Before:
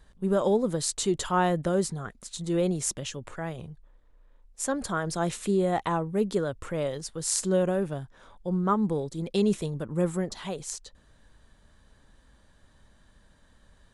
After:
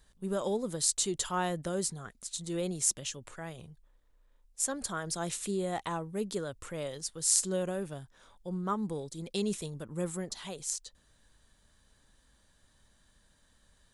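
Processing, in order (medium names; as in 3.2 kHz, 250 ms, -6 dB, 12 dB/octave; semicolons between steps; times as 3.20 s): treble shelf 3.2 kHz +12 dB; trim -8.5 dB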